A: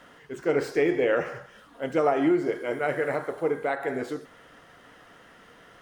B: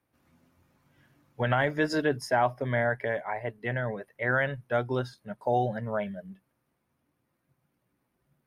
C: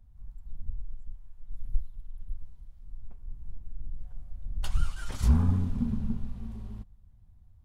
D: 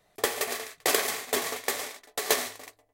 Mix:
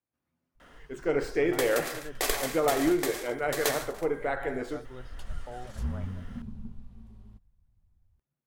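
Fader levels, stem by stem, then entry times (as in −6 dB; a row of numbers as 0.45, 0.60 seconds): −3.0, −17.0, −10.5, −4.5 decibels; 0.60, 0.00, 0.55, 1.35 seconds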